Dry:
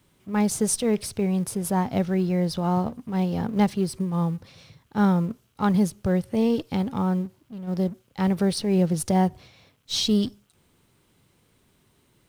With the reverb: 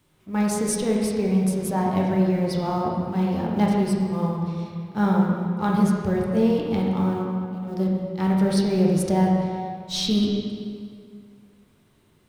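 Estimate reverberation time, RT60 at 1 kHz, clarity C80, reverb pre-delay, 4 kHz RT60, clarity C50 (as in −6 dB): 2.1 s, 2.1 s, 2.0 dB, 12 ms, 1.6 s, 0.0 dB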